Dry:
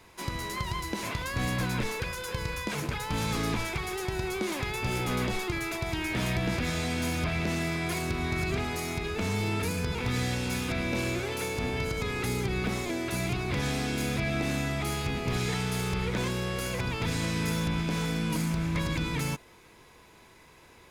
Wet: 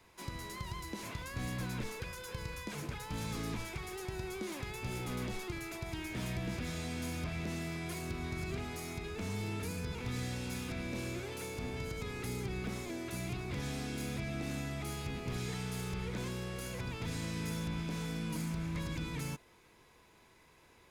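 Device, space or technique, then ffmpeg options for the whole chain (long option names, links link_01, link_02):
one-band saturation: -filter_complex "[0:a]acrossover=split=410|4900[link_01][link_02][link_03];[link_02]asoftclip=type=tanh:threshold=-34dB[link_04];[link_01][link_04][link_03]amix=inputs=3:normalize=0,volume=-8dB"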